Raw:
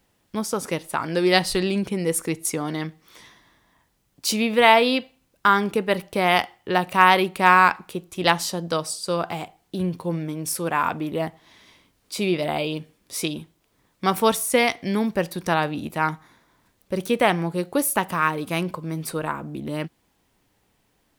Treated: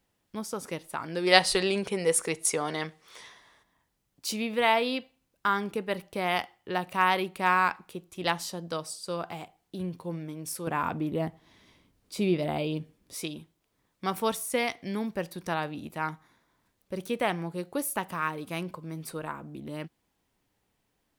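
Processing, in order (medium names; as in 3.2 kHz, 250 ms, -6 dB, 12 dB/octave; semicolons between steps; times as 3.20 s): 1.27–3.63 s: time-frequency box 380–11000 Hz +9 dB; 10.67–13.15 s: bass shelf 470 Hz +9 dB; trim -9 dB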